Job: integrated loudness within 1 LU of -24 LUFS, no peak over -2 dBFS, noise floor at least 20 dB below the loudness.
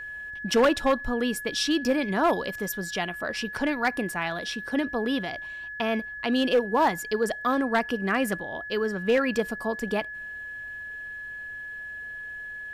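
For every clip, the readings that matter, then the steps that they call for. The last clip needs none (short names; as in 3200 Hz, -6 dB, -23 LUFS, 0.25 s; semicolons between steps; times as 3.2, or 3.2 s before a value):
clipped 0.6%; flat tops at -15.5 dBFS; steady tone 1700 Hz; tone level -35 dBFS; loudness -27.5 LUFS; peak -15.5 dBFS; loudness target -24.0 LUFS
-> clip repair -15.5 dBFS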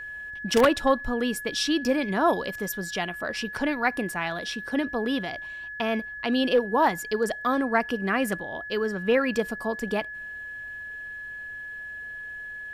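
clipped 0.0%; steady tone 1700 Hz; tone level -35 dBFS
-> notch 1700 Hz, Q 30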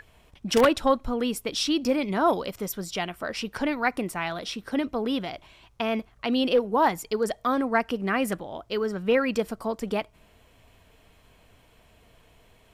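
steady tone none; loudness -26.5 LUFS; peak -6.5 dBFS; loudness target -24.0 LUFS
-> gain +2.5 dB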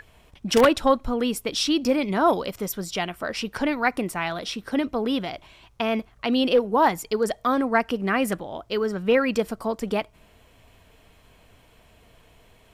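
loudness -24.0 LUFS; peak -4.0 dBFS; noise floor -56 dBFS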